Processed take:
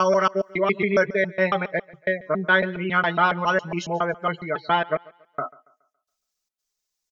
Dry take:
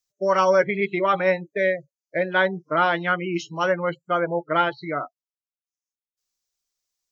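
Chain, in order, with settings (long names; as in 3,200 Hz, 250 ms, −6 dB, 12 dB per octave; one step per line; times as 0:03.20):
slices reordered back to front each 138 ms, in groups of 4
comb filter 4.7 ms, depth 54%
feedback echo with a high-pass in the loop 140 ms, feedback 38%, high-pass 170 Hz, level −22.5 dB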